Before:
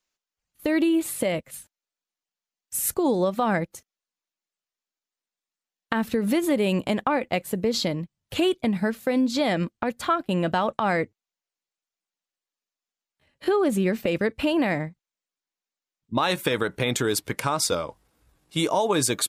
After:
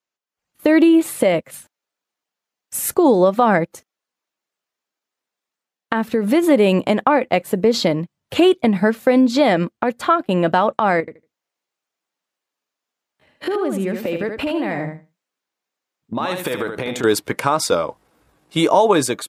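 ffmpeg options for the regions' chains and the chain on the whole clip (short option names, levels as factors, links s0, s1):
-filter_complex "[0:a]asettb=1/sr,asplit=3[s0][s1][s2];[s0]atrim=end=11.004[s3];[s1]atrim=start=11:end=17.04,asetpts=PTS-STARTPTS,afade=t=in:d=0.004:c=qsin,afade=t=out:st=6.036:d=0.004:c=qsin,acompressor=threshold=0.0316:ratio=5:attack=3.2:release=140:knee=1:detection=peak,aecho=1:1:77|154|231:0.501|0.0802|0.0128,atrim=end_sample=266364[s4];[s2]atrim=start=17.036[s5];[s3][s4]acrossfade=d=0.004:c1=hsin:c2=qsin[s6];[s6][s5]acrossfade=d=0.004:c1=qsin:c2=hsin,highpass=f=280:p=1,highshelf=f=2300:g=-9.5,dynaudnorm=f=140:g=5:m=4.47"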